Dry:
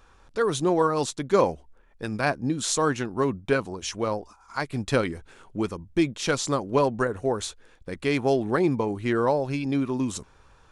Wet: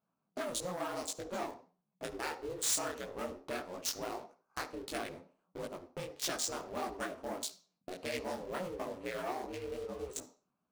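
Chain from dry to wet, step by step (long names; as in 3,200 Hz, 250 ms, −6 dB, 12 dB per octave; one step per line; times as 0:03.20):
adaptive Wiener filter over 25 samples
noise gate −45 dBFS, range −11 dB
ring modulation 180 Hz
parametric band 98 Hz −5 dB 0.22 octaves
leveller curve on the samples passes 2
downward compressor 6 to 1, threshold −30 dBFS, peak gain reduction 14.5 dB
RIAA equalisation recording
wave folding −19 dBFS
on a send at −13 dB: convolution reverb RT60 0.35 s, pre-delay 46 ms
on the sum: micro pitch shift up and down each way 55 cents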